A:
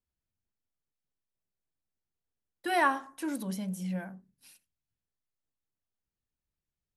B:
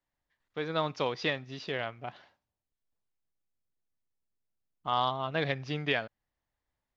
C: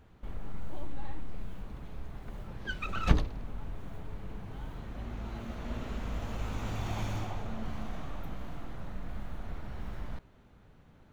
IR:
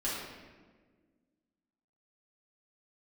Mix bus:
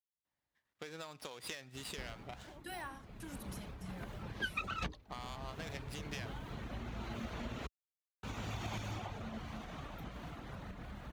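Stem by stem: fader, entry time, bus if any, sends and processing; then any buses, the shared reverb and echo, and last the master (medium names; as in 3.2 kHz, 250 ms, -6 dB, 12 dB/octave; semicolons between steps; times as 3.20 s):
-15.0 dB, 0.00 s, bus A, no send, de-esser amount 95%; trance gate "..xxxxxx" 197 bpm -60 dB
-3.0 dB, 0.25 s, bus A, no send, compression, threshold -37 dBFS, peak gain reduction 13 dB; sliding maximum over 5 samples
+2.5 dB, 1.75 s, muted 7.67–8.23 s, no bus, no send, treble shelf 5.5 kHz -12 dB; reverb removal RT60 0.51 s; compression 6:1, threshold -39 dBFS, peak gain reduction 22.5 dB
bus A: 0.0 dB, compression, threshold -45 dBFS, peak gain reduction 8.5 dB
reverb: none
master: high-pass 60 Hz; treble shelf 2.4 kHz +12 dB; tape noise reduction on one side only decoder only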